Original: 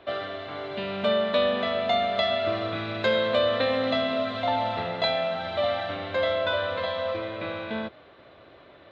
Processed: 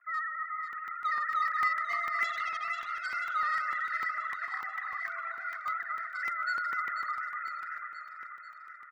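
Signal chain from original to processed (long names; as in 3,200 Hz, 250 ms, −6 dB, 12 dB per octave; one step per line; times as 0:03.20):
three sine waves on the formant tracks
Chebyshev band-pass filter 1,000–2,000 Hz, order 4
in parallel at −5 dB: hard clipping −39 dBFS, distortion −12 dB
on the sum: comb filter 1.6 ms, depth 85%
0:02.24–0:02.88: tube saturation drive 35 dB, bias 0.75
high-frequency loss of the air 93 metres
0:04.10–0:05.66: compressor whose output falls as the input rises −41 dBFS, ratio −0.5
spectral tilt +4 dB per octave
delay that swaps between a low-pass and a high-pass 245 ms, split 1,600 Hz, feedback 77%, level −4 dB
regular buffer underruns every 0.15 s, samples 64, zero, from 0:00.73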